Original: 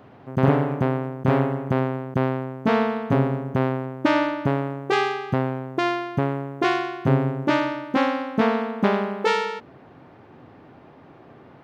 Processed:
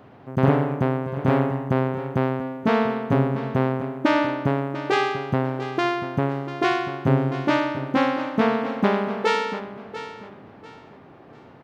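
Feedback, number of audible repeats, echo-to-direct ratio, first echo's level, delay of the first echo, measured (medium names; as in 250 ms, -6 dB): 29%, 3, -12.5 dB, -13.0 dB, 692 ms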